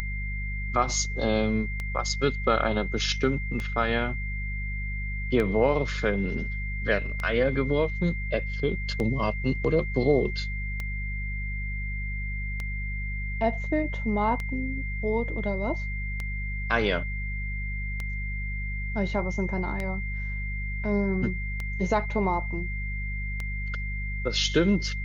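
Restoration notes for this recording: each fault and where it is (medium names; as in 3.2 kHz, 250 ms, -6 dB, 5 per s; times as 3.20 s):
hum 50 Hz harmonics 4 -32 dBFS
tick 33 1/3 rpm -18 dBFS
whine 2.1 kHz -35 dBFS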